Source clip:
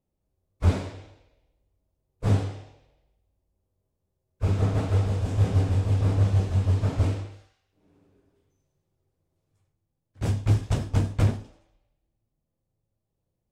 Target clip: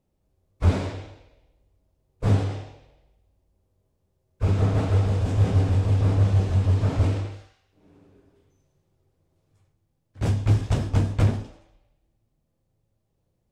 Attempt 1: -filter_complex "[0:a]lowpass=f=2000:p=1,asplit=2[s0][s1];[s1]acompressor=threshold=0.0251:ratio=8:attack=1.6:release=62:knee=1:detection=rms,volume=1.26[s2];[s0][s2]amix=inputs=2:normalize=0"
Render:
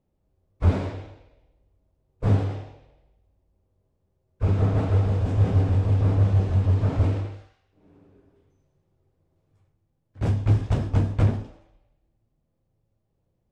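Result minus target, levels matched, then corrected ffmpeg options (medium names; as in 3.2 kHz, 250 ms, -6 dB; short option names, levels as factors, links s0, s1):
8 kHz band -8.5 dB
-filter_complex "[0:a]lowpass=f=7400:p=1,asplit=2[s0][s1];[s1]acompressor=threshold=0.0251:ratio=8:attack=1.6:release=62:knee=1:detection=rms,volume=1.26[s2];[s0][s2]amix=inputs=2:normalize=0"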